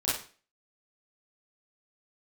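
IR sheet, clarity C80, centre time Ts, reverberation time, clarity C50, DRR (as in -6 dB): 8.5 dB, 51 ms, 0.40 s, 1.5 dB, -10.0 dB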